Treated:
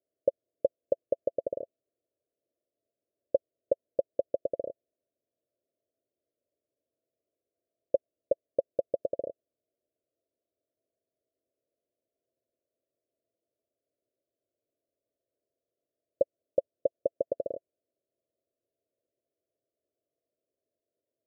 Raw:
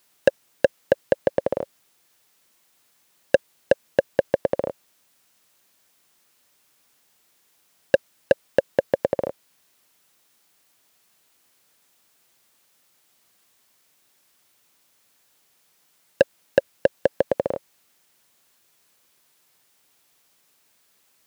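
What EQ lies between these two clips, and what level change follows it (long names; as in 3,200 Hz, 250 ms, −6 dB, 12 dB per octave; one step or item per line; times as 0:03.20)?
Chebyshev low-pass filter 670 Hz, order 8
parametric band 180 Hz −13.5 dB 0.62 octaves
low-shelf EQ 260 Hz −9 dB
−6.0 dB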